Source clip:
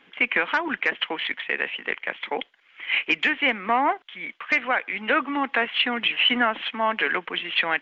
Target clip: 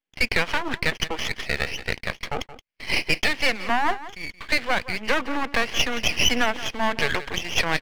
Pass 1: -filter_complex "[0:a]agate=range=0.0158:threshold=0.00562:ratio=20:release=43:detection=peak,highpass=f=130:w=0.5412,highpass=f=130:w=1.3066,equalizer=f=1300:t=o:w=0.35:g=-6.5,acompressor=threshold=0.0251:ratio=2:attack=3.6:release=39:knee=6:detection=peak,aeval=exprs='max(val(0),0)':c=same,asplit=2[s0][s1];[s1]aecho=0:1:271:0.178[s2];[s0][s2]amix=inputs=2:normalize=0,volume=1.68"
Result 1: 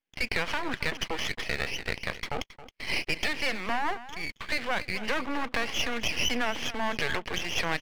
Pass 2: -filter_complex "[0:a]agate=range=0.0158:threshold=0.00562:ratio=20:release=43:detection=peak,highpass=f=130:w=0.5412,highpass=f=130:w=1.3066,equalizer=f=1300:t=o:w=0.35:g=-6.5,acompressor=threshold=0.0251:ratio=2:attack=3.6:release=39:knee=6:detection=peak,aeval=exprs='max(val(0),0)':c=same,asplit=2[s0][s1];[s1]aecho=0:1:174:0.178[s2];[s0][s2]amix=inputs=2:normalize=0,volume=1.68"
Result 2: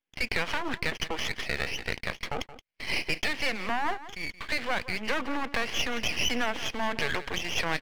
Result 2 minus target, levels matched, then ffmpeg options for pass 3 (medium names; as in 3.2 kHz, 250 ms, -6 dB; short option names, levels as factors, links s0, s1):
compression: peak gain reduction +9.5 dB
-filter_complex "[0:a]agate=range=0.0158:threshold=0.00562:ratio=20:release=43:detection=peak,highpass=f=130:w=0.5412,highpass=f=130:w=1.3066,equalizer=f=1300:t=o:w=0.35:g=-6.5,aeval=exprs='max(val(0),0)':c=same,asplit=2[s0][s1];[s1]aecho=0:1:174:0.178[s2];[s0][s2]amix=inputs=2:normalize=0,volume=1.68"